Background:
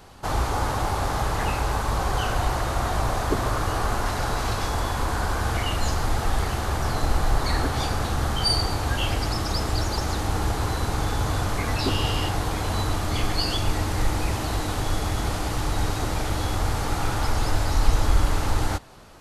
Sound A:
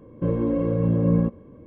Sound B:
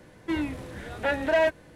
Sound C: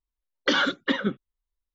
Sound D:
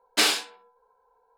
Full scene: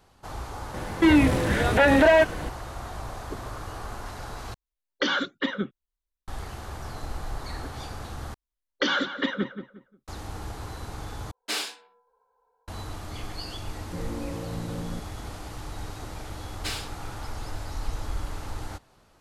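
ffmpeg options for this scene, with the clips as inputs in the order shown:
ffmpeg -i bed.wav -i cue0.wav -i cue1.wav -i cue2.wav -i cue3.wav -filter_complex "[3:a]asplit=2[link_01][link_02];[4:a]asplit=2[link_03][link_04];[0:a]volume=-12dB[link_05];[2:a]alimiter=level_in=24dB:limit=-1dB:release=50:level=0:latency=1[link_06];[link_02]asplit=2[link_07][link_08];[link_08]adelay=178,lowpass=frequency=2400:poles=1,volume=-9.5dB,asplit=2[link_09][link_10];[link_10]adelay=178,lowpass=frequency=2400:poles=1,volume=0.29,asplit=2[link_11][link_12];[link_12]adelay=178,lowpass=frequency=2400:poles=1,volume=0.29[link_13];[link_07][link_09][link_11][link_13]amix=inputs=4:normalize=0[link_14];[link_03]dynaudnorm=framelen=130:gausssize=3:maxgain=9.5dB[link_15];[1:a]alimiter=limit=-17.5dB:level=0:latency=1:release=71[link_16];[link_05]asplit=4[link_17][link_18][link_19][link_20];[link_17]atrim=end=4.544[link_21];[link_01]atrim=end=1.74,asetpts=PTS-STARTPTS,volume=-3dB[link_22];[link_18]atrim=start=6.276:end=8.344[link_23];[link_14]atrim=end=1.74,asetpts=PTS-STARTPTS,volume=-2.5dB[link_24];[link_19]atrim=start=10.076:end=11.314[link_25];[link_15]atrim=end=1.37,asetpts=PTS-STARTPTS,volume=-14dB[link_26];[link_20]atrim=start=12.676[link_27];[link_06]atrim=end=1.75,asetpts=PTS-STARTPTS,volume=-8.5dB,afade=type=in:duration=0.004:curve=hsin,afade=type=out:start_time=1.746:duration=0.004:curve=hsin,adelay=740[link_28];[link_16]atrim=end=1.66,asetpts=PTS-STARTPTS,volume=-10dB,afade=type=in:duration=0.004:curve=hsin,afade=type=out:start_time=1.656:duration=0.004:curve=hsin,adelay=13710[link_29];[link_04]atrim=end=1.37,asetpts=PTS-STARTPTS,volume=-12.5dB,afade=type=in:duration=0.004:curve=hsin,afade=type=out:start_time=1.366:duration=0.004:curve=hsin,adelay=16470[link_30];[link_21][link_22]acrossfade=duration=0.004:curve1=hsin:curve2=hsin[link_31];[link_31][link_23]acrossfade=duration=0.004:curve1=hsin:curve2=hsin[link_32];[link_32][link_24]acrossfade=duration=0.004:curve1=hsin:curve2=hsin[link_33];[link_33][link_25]acrossfade=duration=0.004:curve1=hsin:curve2=hsin[link_34];[link_34][link_26]acrossfade=duration=0.004:curve1=hsin:curve2=hsin[link_35];[link_35][link_27]acrossfade=duration=0.004:curve1=hsin:curve2=hsin[link_36];[link_36][link_28][link_29][link_30]amix=inputs=4:normalize=0" out.wav

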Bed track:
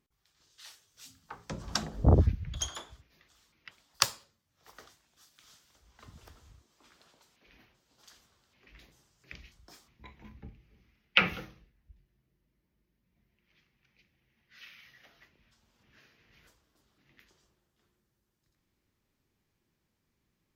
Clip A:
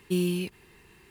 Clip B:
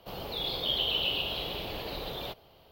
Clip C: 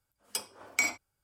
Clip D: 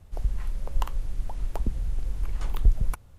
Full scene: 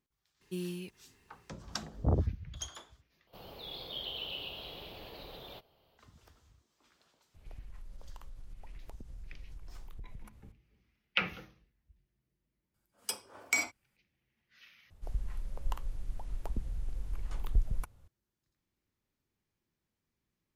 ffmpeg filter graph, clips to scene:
ffmpeg -i bed.wav -i cue0.wav -i cue1.wav -i cue2.wav -i cue3.wav -filter_complex "[4:a]asplit=2[link_01][link_02];[0:a]volume=-7dB[link_03];[link_01]acompressor=threshold=-35dB:ratio=6:attack=3.2:release=140:knee=1:detection=peak[link_04];[link_03]asplit=3[link_05][link_06][link_07];[link_05]atrim=end=3.274[link_08];[2:a]atrim=end=2.71,asetpts=PTS-STARTPTS,volume=-11dB[link_09];[link_06]atrim=start=5.976:end=14.904[link_10];[link_02]atrim=end=3.18,asetpts=PTS-STARTPTS,volume=-8.5dB[link_11];[link_07]atrim=start=18.076[link_12];[1:a]atrim=end=1.1,asetpts=PTS-STARTPTS,volume=-12dB,afade=type=in:duration=0.004:curve=hsin,afade=type=out:start_time=1.096:duration=0.004:curve=hsin,adelay=410[link_13];[link_04]atrim=end=3.18,asetpts=PTS-STARTPTS,volume=-8dB,afade=type=in:duration=0.004:curve=hsin,afade=type=out:start_time=3.176:duration=0.004:curve=hsin,adelay=7340[link_14];[3:a]atrim=end=1.23,asetpts=PTS-STARTPTS,volume=-2dB,afade=type=in:duration=0.004:curve=hsin,afade=type=out:start_time=1.226:duration=0.004:curve=hsin,adelay=12740[link_15];[link_08][link_09]acrossfade=duration=0.004:curve1=hsin:curve2=hsin[link_16];[link_16][link_10]acrossfade=duration=0.004:curve1=hsin:curve2=hsin[link_17];[link_17][link_11]acrossfade=duration=0.004:curve1=hsin:curve2=hsin[link_18];[link_18][link_12]acrossfade=duration=0.004:curve1=hsin:curve2=hsin[link_19];[link_19][link_13][link_14][link_15]amix=inputs=4:normalize=0" out.wav

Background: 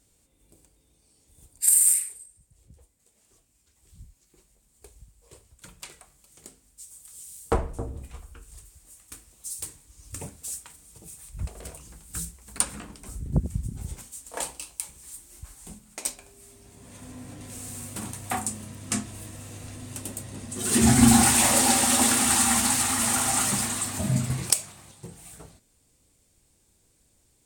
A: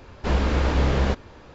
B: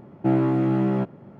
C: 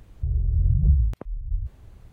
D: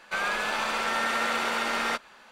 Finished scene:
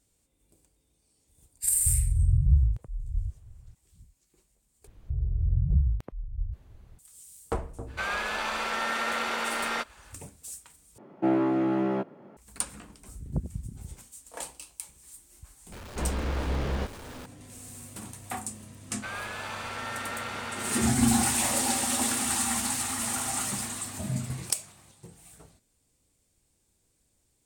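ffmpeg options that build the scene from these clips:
ffmpeg -i bed.wav -i cue0.wav -i cue1.wav -i cue2.wav -i cue3.wav -filter_complex "[3:a]asplit=2[link_01][link_02];[4:a]asplit=2[link_03][link_04];[0:a]volume=-6.5dB[link_05];[link_01]lowshelf=frequency=170:width_type=q:width=1.5:gain=10[link_06];[2:a]highpass=280[link_07];[1:a]aeval=exprs='val(0)+0.5*0.0299*sgn(val(0))':channel_layout=same[link_08];[link_04]acrusher=bits=9:mode=log:mix=0:aa=0.000001[link_09];[link_05]asplit=3[link_10][link_11][link_12];[link_10]atrim=end=4.874[link_13];[link_02]atrim=end=2.12,asetpts=PTS-STARTPTS,volume=-5dB[link_14];[link_11]atrim=start=6.986:end=10.984[link_15];[link_07]atrim=end=1.39,asetpts=PTS-STARTPTS,volume=-1dB[link_16];[link_12]atrim=start=12.366[link_17];[link_06]atrim=end=2.12,asetpts=PTS-STARTPTS,volume=-13.5dB,afade=type=in:duration=0.004:curve=hsin,afade=type=out:start_time=2.116:duration=0.004:curve=hsin,adelay=1630[link_18];[link_03]atrim=end=2.31,asetpts=PTS-STARTPTS,volume=-2.5dB,afade=type=in:duration=0.05,afade=type=out:start_time=2.26:duration=0.05,adelay=346626S[link_19];[link_08]atrim=end=1.54,asetpts=PTS-STARTPTS,volume=-9.5dB,afade=type=in:duration=0.004:curve=hsin,afade=type=out:start_time=1.536:duration=0.004:curve=hsin,adelay=693252S[link_20];[link_09]atrim=end=2.31,asetpts=PTS-STARTPTS,volume=-8.5dB,afade=type=in:duration=0.004:curve=hsin,afade=type=out:start_time=2.306:duration=0.004:curve=hsin,adelay=18910[link_21];[link_13][link_14]acrossfade=duration=0.004:curve1=hsin:curve2=hsin[link_22];[link_22][link_15]acrossfade=duration=0.004:curve1=hsin:curve2=hsin[link_23];[link_23][link_16]acrossfade=duration=0.004:curve1=hsin:curve2=hsin[link_24];[link_24][link_17]acrossfade=duration=0.004:curve1=hsin:curve2=hsin[link_25];[link_25][link_18][link_19][link_20][link_21]amix=inputs=5:normalize=0" out.wav

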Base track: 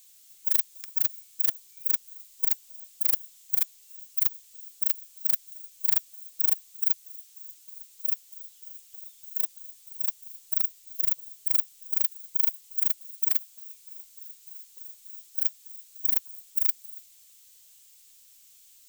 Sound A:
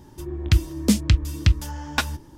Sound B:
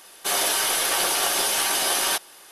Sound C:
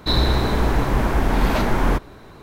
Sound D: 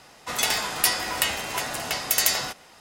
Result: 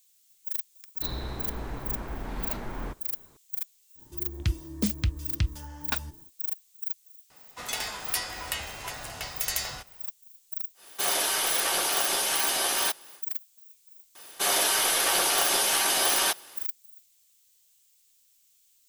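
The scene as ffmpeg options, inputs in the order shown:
ffmpeg -i bed.wav -i cue0.wav -i cue1.wav -i cue2.wav -i cue3.wav -filter_complex "[2:a]asplit=2[link_01][link_02];[0:a]volume=-8.5dB[link_03];[4:a]asubboost=boost=9:cutoff=96[link_04];[3:a]atrim=end=2.42,asetpts=PTS-STARTPTS,volume=-17dB,afade=type=in:duration=0.004:curve=hsin,afade=type=out:start_time=2.416:duration=0.004:curve=hsin,adelay=950[link_05];[1:a]atrim=end=2.37,asetpts=PTS-STARTPTS,volume=-9.5dB,afade=type=in:duration=0.1,afade=type=out:start_time=2.27:duration=0.1,adelay=3940[link_06];[link_04]atrim=end=2.8,asetpts=PTS-STARTPTS,volume=-8.5dB,afade=type=in:duration=0.004:curve=hsin,afade=type=out:start_time=2.796:duration=0.004:curve=hsin,adelay=321930S[link_07];[link_01]atrim=end=2.51,asetpts=PTS-STARTPTS,volume=-4dB,afade=type=in:duration=0.1,afade=type=out:start_time=2.41:duration=0.1,adelay=473634S[link_08];[link_02]atrim=end=2.51,asetpts=PTS-STARTPTS,volume=-1.5dB,afade=type=in:duration=0.004:curve=hsin,afade=type=out:start_time=2.506:duration=0.004:curve=hsin,adelay=14150[link_09];[link_03][link_05][link_06][link_07][link_08][link_09]amix=inputs=6:normalize=0" out.wav

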